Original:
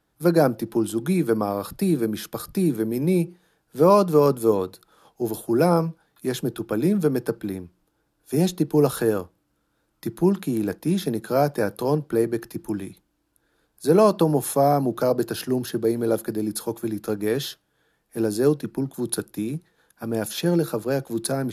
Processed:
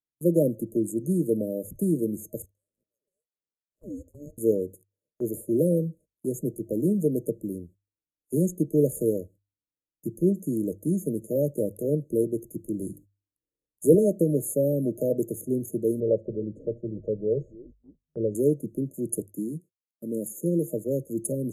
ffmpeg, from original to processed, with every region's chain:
-filter_complex "[0:a]asettb=1/sr,asplit=3[a][b][c];[a]atrim=end=2.424[d];[b]atrim=start=2.42:end=4.38,asetpts=PTS-STARTPTS,afade=t=in:d=0.004:c=qsin,afade=t=out:st=1.956:d=0.004:c=qsin,lowpass=f=2k:p=1,acompressor=threshold=-16dB:ratio=8:attack=3.2:release=140:knee=1:detection=peak,aeval=exprs='val(0)*sin(2*PI*1300*n/s)':c=same[e];[c]atrim=start=4.376[f];[d][e]acrossfade=d=0.004:c1=hsin:c2=qsin[g];[g][f]acrossfade=d=0.004:c1=qsin:c2=hsin,asettb=1/sr,asplit=3[h][i][j];[h]atrim=end=12.794[k];[i]atrim=start=12.79:end=13.95,asetpts=PTS-STARTPTS,afade=t=in:d=0.004:c=qsin,afade=t=out:st=1.156:d=0.004:c=qsin,bandreject=f=50:t=h:w=6,bandreject=f=100:t=h:w=6,bandreject=f=150:t=h:w=6,bandreject=f=200:t=h:w=6,bandreject=f=250:t=h:w=6,bandreject=f=300:t=h:w=6,bandreject=f=350:t=h:w=6,acontrast=47[l];[j]atrim=start=13.946[m];[k][l]acrossfade=d=0.004:c1=hsin:c2=qsin[n];[n][m]acrossfade=d=0.004:c1=qsin:c2=hsin,asettb=1/sr,asplit=3[o][p][q];[o]atrim=end=16.004[r];[p]atrim=start=16:end=18.35,asetpts=PTS-STARTPTS,afade=t=in:d=0.004:c=qsin,afade=t=out:st=2.346:d=0.004:c=qsin,lowpass=f=2.7k:w=0.5412,lowpass=f=2.7k:w=1.3066,aecho=1:1:1.8:0.69,atrim=end_sample=103635,asplit=5[s][t][u][v][w];[t]adelay=284,afreqshift=-91,volume=-20.5dB[x];[u]adelay=568,afreqshift=-182,volume=-25.7dB[y];[v]adelay=852,afreqshift=-273,volume=-30.9dB[z];[w]adelay=1136,afreqshift=-364,volume=-36.1dB[aa];[s][x][y][z][aa]amix=inputs=5:normalize=0,atrim=end_sample=103635[ab];[q]atrim=start=18.346[ac];[r][ab]acrossfade=d=0.004:c1=hsin:c2=qsin[ad];[ad][ac]acrossfade=d=0.004:c1=qsin:c2=hsin,asettb=1/sr,asplit=3[ae][af][ag];[ae]atrim=end=19.264[ah];[af]atrim=start=19.26:end=20.73,asetpts=PTS-STARTPTS,afade=t=in:d=0.004:c=qsin,afade=t=out:st=1.466:d=0.004:c=qsin,highpass=f=150:w=0.5412,highpass=f=150:w=1.3066,agate=range=-33dB:threshold=-53dB:ratio=3:release=100:detection=peak,equalizer=f=660:w=2.6:g=-6.5[ai];[ag]atrim=start=20.726[aj];[ah][ai]acrossfade=d=0.004:c1=hsin:c2=qsin[ak];[ak][aj]acrossfade=d=0.004:c1=qsin:c2=hsin,afftfilt=real='re*(1-between(b*sr/4096,630,6400))':imag='im*(1-between(b*sr/4096,630,6400))':win_size=4096:overlap=0.75,agate=range=-28dB:threshold=-45dB:ratio=16:detection=peak,bandreject=f=50:t=h:w=6,bandreject=f=100:t=h:w=6,volume=-3dB"

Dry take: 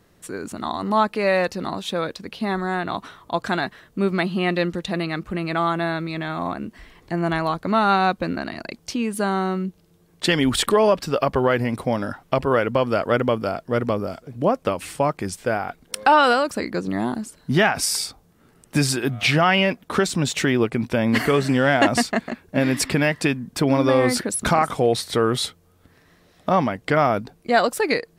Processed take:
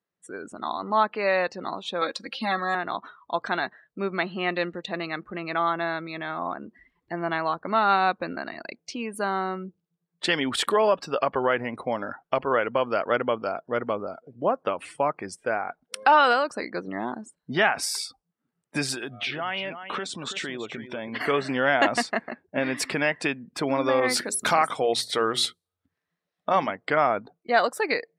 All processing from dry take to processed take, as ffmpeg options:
-filter_complex "[0:a]asettb=1/sr,asplit=3[a][b][c];[a]atrim=end=2.014[d];[b]atrim=start=2.01:end=2.75,asetpts=PTS-STARTPTS,afade=t=in:d=0.004:c=qsin,afade=t=out:st=0.736:d=0.004:c=qsin,highshelf=f=2.9k:g=7.5,aecho=1:1:3.7:0.93,atrim=end_sample=32634[e];[c]atrim=start=2.746[f];[d][e]acrossfade=d=0.004:c1=hsin:c2=qsin[g];[g][f]acrossfade=d=0.004:c1=qsin:c2=hsin,asettb=1/sr,asplit=3[h][i][j];[h]atrim=end=18.944[k];[i]atrim=start=18.94:end=21.21,asetpts=PTS-STARTPTS,afade=t=in:d=0.004:c=qsin,afade=t=out:st=2.266:d=0.004:c=qsin,equalizer=f=3.4k:w=5.8:g=6,acompressor=threshold=-23dB:ratio=5:attack=3.2:release=140:knee=1:detection=peak,aecho=1:1:330:0.335,atrim=end_sample=100107[l];[j]atrim=start=21.206[m];[k][l]acrossfade=d=0.004:c1=hsin:c2=qsin[n];[n][m]acrossfade=d=0.004:c1=qsin:c2=hsin,asettb=1/sr,asplit=3[o][p][q];[o]atrim=end=24.004[r];[p]atrim=start=24:end=26.71,asetpts=PTS-STARTPTS,afade=t=in:d=0.004:c=qsin,afade=t=out:st=2.706:d=0.004:c=qsin,bandreject=f=60:t=h:w=6,bandreject=f=120:t=h:w=6,bandreject=f=180:t=h:w=6,bandreject=f=240:t=h:w=6,bandreject=f=300:t=h:w=6,bandreject=f=360:t=h:w=6,bandreject=f=420:t=h:w=6,adynamicequalizer=threshold=0.0224:dfrequency=2100:dqfactor=0.7:tfrequency=2100:tqfactor=0.7:attack=5:release=100:ratio=0.375:range=3:mode=boostabove:tftype=highshelf[s];[q]atrim=start=26.706[t];[r][s]acrossfade=d=0.004:c1=hsin:c2=qsin[u];[u][t]acrossfade=d=0.004:c1=qsin:c2=hsin,afftdn=nr=25:nf=-40,highpass=f=680:p=1,highshelf=f=4.2k:g=-8.5"

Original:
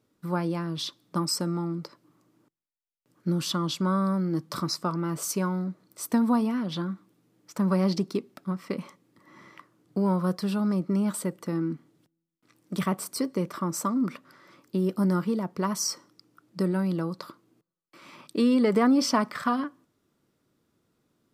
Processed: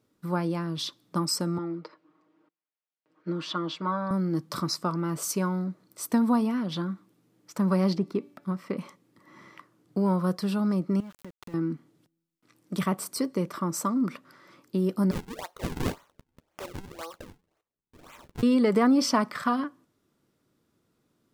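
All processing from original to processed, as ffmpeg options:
-filter_complex "[0:a]asettb=1/sr,asplit=3[a][b][c];[a]atrim=end=1.584[d];[b]atrim=start=1.58:end=4.11,asetpts=PTS-STARTPTS,afade=t=in:d=0.004:c=qsin,afade=t=out:st=2.526:d=0.004:c=qsin,highpass=340,lowpass=2.8k,aecho=1:1:6.4:0.71,atrim=end_sample=111573[e];[c]atrim=start=4.106[f];[d][e]acrossfade=d=0.004:c1=hsin:c2=qsin[g];[g][f]acrossfade=d=0.004:c1=qsin:c2=hsin,asettb=1/sr,asplit=3[h][i][j];[h]atrim=end=7.954[k];[i]atrim=start=7.95:end=8.77,asetpts=PTS-STARTPTS,afade=t=in:d=0.004:c=qsin,afade=t=out:st=0.816:d=0.004:c=qsin,acrossover=split=2500[l][m];[m]acompressor=threshold=-54dB:ratio=4:attack=1:release=60[n];[l][n]amix=inputs=2:normalize=0,bandreject=f=289.5:t=h:w=4,bandreject=f=579:t=h:w=4,bandreject=f=868.5:t=h:w=4,bandreject=f=1.158k:t=h:w=4,bandreject=f=1.4475k:t=h:w=4,bandreject=f=1.737k:t=h:w=4,bandreject=f=2.0265k:t=h:w=4,bandreject=f=2.316k:t=h:w=4,bandreject=f=2.6055k:t=h:w=4,bandreject=f=2.895k:t=h:w=4,bandreject=f=3.1845k:t=h:w=4,bandreject=f=3.474k:t=h:w=4,bandreject=f=3.7635k:t=h:w=4,bandreject=f=4.053k:t=h:w=4[o];[j]atrim=start=8.766[p];[k][o]acrossfade=d=0.004:c1=hsin:c2=qsin[q];[q][p]acrossfade=d=0.004:c1=qsin:c2=hsin,asettb=1/sr,asplit=3[r][s][t];[r]atrim=end=11.004[u];[s]atrim=start=11:end=11.54,asetpts=PTS-STARTPTS,afade=t=in:d=0.004:c=qsin,afade=t=out:st=0.536:d=0.004:c=qsin,highshelf=f=5k:t=q:w=1.5:g=-12.5,aeval=exprs='val(0)*gte(abs(val(0)),0.0168)':c=same,acompressor=threshold=-40dB:ratio=6:attack=3.2:release=140:knee=1:detection=peak[v];[t]atrim=start=11.536[w];[u][v]acrossfade=d=0.004:c1=hsin:c2=qsin[x];[x][w]acrossfade=d=0.004:c1=qsin:c2=hsin,asettb=1/sr,asplit=3[y][z][aa];[y]atrim=end=15.114[ab];[z]atrim=start=15.11:end=18.43,asetpts=PTS-STARTPTS,afade=t=in:d=0.004:c=qsin,afade=t=out:st=3.316:d=0.004:c=qsin,highpass=f=570:w=0.5412,highpass=f=570:w=1.3066,acrusher=samples=42:mix=1:aa=0.000001:lfo=1:lforange=67.2:lforate=1.9,asplit=2[ac][ad];[ad]adelay=12,volume=-13.5dB[ae];[ac][ae]amix=inputs=2:normalize=0,atrim=end_sample=146412[af];[aa]atrim=start=18.426[ag];[ab][af]acrossfade=d=0.004:c1=hsin:c2=qsin[ah];[ah][ag]acrossfade=d=0.004:c1=qsin:c2=hsin"

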